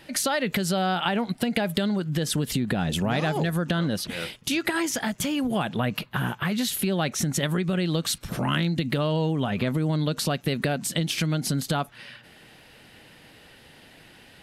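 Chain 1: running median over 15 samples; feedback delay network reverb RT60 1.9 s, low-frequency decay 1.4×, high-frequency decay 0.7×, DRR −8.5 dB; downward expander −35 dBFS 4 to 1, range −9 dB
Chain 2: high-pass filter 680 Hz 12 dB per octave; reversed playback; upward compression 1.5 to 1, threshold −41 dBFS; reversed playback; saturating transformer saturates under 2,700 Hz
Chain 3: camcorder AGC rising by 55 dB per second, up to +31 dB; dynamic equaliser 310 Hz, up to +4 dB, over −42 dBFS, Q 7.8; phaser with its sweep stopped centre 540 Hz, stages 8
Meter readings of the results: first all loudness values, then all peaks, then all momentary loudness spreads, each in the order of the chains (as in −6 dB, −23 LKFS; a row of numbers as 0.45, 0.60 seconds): −16.0, −31.0, −27.5 LKFS; −1.5, −11.0, −11.0 dBFS; 6, 20, 4 LU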